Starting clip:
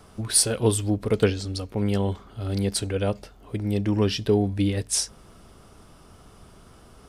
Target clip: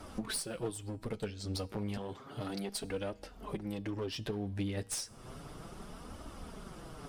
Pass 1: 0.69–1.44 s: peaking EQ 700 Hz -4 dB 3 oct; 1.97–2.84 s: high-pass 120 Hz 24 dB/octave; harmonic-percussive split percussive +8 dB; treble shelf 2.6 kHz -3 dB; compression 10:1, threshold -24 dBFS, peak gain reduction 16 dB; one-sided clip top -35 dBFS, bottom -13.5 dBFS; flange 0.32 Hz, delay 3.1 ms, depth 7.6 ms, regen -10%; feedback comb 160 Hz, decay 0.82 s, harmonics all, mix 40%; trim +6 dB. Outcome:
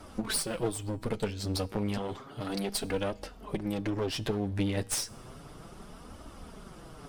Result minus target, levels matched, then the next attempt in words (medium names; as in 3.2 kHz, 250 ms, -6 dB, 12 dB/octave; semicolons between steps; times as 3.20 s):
compression: peak gain reduction -7.5 dB
0.69–1.44 s: peaking EQ 700 Hz -4 dB 3 oct; 1.97–2.84 s: high-pass 120 Hz 24 dB/octave; harmonic-percussive split percussive +8 dB; treble shelf 2.6 kHz -3 dB; compression 10:1, threshold -32.5 dBFS, peak gain reduction 23.5 dB; one-sided clip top -35 dBFS, bottom -13.5 dBFS; flange 0.32 Hz, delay 3.1 ms, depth 7.6 ms, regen -10%; feedback comb 160 Hz, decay 0.82 s, harmonics all, mix 40%; trim +6 dB